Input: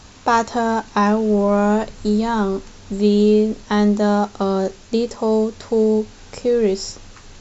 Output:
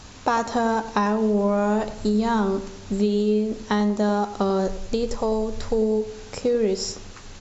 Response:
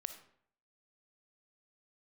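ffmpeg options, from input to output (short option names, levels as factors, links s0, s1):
-filter_complex "[0:a]acompressor=threshold=0.126:ratio=6,asplit=3[s0][s1][s2];[s0]afade=t=out:st=4.66:d=0.02[s3];[s1]asubboost=boost=7.5:cutoff=63,afade=t=in:st=4.66:d=0.02,afade=t=out:st=5.77:d=0.02[s4];[s2]afade=t=in:st=5.77:d=0.02[s5];[s3][s4][s5]amix=inputs=3:normalize=0,asplit=2[s6][s7];[s7]adelay=95,lowpass=f=1700:p=1,volume=0.251,asplit=2[s8][s9];[s9]adelay=95,lowpass=f=1700:p=1,volume=0.47,asplit=2[s10][s11];[s11]adelay=95,lowpass=f=1700:p=1,volume=0.47,asplit=2[s12][s13];[s13]adelay=95,lowpass=f=1700:p=1,volume=0.47,asplit=2[s14][s15];[s15]adelay=95,lowpass=f=1700:p=1,volume=0.47[s16];[s6][s8][s10][s12][s14][s16]amix=inputs=6:normalize=0"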